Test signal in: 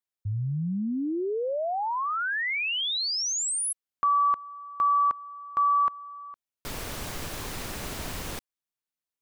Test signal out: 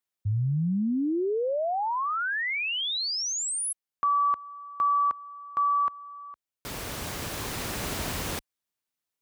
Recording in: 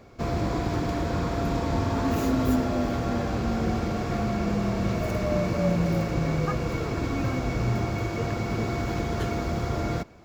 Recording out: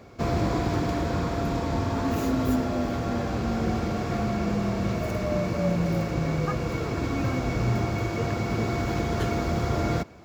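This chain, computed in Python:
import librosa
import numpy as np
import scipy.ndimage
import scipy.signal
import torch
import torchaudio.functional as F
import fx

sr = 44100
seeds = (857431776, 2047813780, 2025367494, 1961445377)

y = scipy.signal.sosfilt(scipy.signal.butter(2, 46.0, 'highpass', fs=sr, output='sos'), x)
y = fx.rider(y, sr, range_db=4, speed_s=2.0)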